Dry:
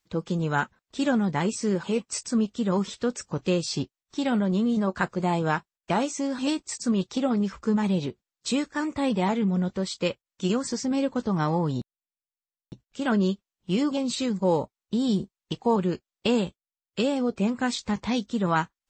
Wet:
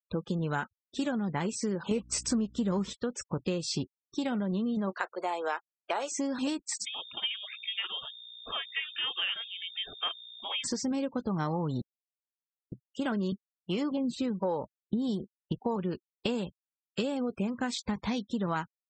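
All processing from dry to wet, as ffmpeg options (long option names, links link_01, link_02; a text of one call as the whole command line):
ffmpeg -i in.wav -filter_complex "[0:a]asettb=1/sr,asplit=3[link_01][link_02][link_03];[link_01]atrim=end=1.914[link_04];[link_02]atrim=start=1.91:end=2.93,asetpts=PTS-STARTPTS,afade=type=in:duration=0.004:curve=qsin,afade=type=out:start_time=1.016:duration=0.004:curve=qsin,lowshelf=frequency=440:gain=4,acontrast=88,aeval=exprs='val(0)+0.00708*(sin(2*PI*60*n/s)+sin(2*PI*2*60*n/s)/2+sin(2*PI*3*60*n/s)/3+sin(2*PI*4*60*n/s)/4+sin(2*PI*5*60*n/s)/5)':channel_layout=same[link_05];[link_03]atrim=start=2.926[link_06];[link_04][link_05]acrossfade=duration=0.004:curve1=hsin:curve2=qsin[link_07];[link_07][link_06]acrossfade=duration=0.004:curve1=qsin:curve2=hsin,asettb=1/sr,asplit=3[link_08][link_09][link_10];[link_08]atrim=end=4.944[link_11];[link_09]atrim=start=4.94:end=6.12,asetpts=PTS-STARTPTS,afade=type=in:duration=0.004:curve=qsin,afade=type=out:start_time=1.176:duration=0.004:curve=qsin,highpass=frequency=430:width=0.5412,highpass=frequency=430:width=1.3066,acrusher=bits=7:mix=0:aa=0.5[link_12];[link_10]atrim=start=6.116[link_13];[link_11][link_12]acrossfade=duration=0.004:curve1=hsin:curve2=qsin[link_14];[link_14][link_13]acrossfade=duration=0.004:curve1=qsin:curve2=hsin,asettb=1/sr,asplit=3[link_15][link_16][link_17];[link_15]atrim=end=6.854[link_18];[link_16]atrim=start=6.85:end=10.64,asetpts=PTS-STARTPTS,afade=type=in:duration=0.004:curve=qsin,afade=type=out:start_time=3.786:duration=0.004:curve=qsin,highpass=frequency=520:width=0.5412,highpass=frequency=520:width=1.3066,aeval=exprs='val(0)+0.00447*(sin(2*PI*60*n/s)+sin(2*PI*2*60*n/s)/2+sin(2*PI*3*60*n/s)/3+sin(2*PI*4*60*n/s)/4+sin(2*PI*5*60*n/s)/5)':channel_layout=same,lowpass=frequency=3100:width_type=q:width=0.5098,lowpass=frequency=3100:width_type=q:width=0.6013,lowpass=frequency=3100:width_type=q:width=0.9,lowpass=frequency=3100:width_type=q:width=2.563,afreqshift=-3700[link_19];[link_17]atrim=start=10.636[link_20];[link_18][link_19]acrossfade=duration=0.004:curve1=hsin:curve2=qsin[link_21];[link_21][link_20]acrossfade=duration=0.004:curve1=qsin:curve2=hsin,asettb=1/sr,asplit=3[link_22][link_23][link_24];[link_22]atrim=end=13.324[link_25];[link_23]atrim=start=13.32:end=15.63,asetpts=PTS-STARTPTS,afade=type=in:duration=0.004:curve=qsin,afade=type=out:start_time=2.306:duration=0.004:curve=qsin,highshelf=frequency=2700:gain=-6.5,acontrast=30,acrossover=split=420[link_26][link_27];[link_26]aeval=exprs='val(0)*(1-0.7/2+0.7/2*cos(2*PI*1.3*n/s))':channel_layout=same[link_28];[link_27]aeval=exprs='val(0)*(1-0.7/2-0.7/2*cos(2*PI*1.3*n/s))':channel_layout=same[link_29];[link_28][link_29]amix=inputs=2:normalize=0[link_30];[link_24]atrim=start=15.626[link_31];[link_25][link_30]acrossfade=duration=0.004:curve1=hsin:curve2=qsin[link_32];[link_32][link_31]acrossfade=duration=0.004:curve1=qsin:curve2=hsin,afftfilt=real='re*gte(hypot(re,im),0.00794)':imag='im*gte(hypot(re,im),0.00794)':win_size=1024:overlap=0.75,acompressor=threshold=-28dB:ratio=6" out.wav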